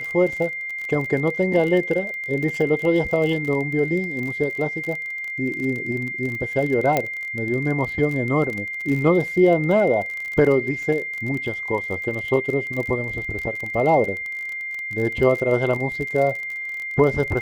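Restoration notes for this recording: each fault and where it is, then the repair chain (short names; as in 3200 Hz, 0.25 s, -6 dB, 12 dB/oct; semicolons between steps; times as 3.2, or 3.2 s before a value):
crackle 34/s -27 dBFS
tone 2100 Hz -27 dBFS
6.97 pop -6 dBFS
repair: de-click; notch 2100 Hz, Q 30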